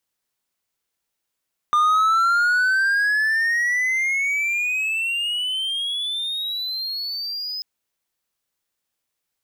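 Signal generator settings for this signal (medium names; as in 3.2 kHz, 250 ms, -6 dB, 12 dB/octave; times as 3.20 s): gliding synth tone triangle, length 5.89 s, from 1.2 kHz, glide +25 st, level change -12 dB, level -12 dB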